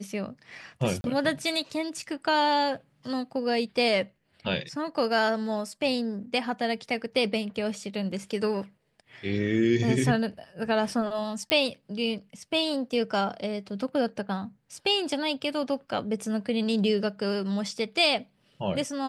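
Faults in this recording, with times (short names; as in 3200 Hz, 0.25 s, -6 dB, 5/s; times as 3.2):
1.01–1.04 gap 31 ms
11.5 pop -9 dBFS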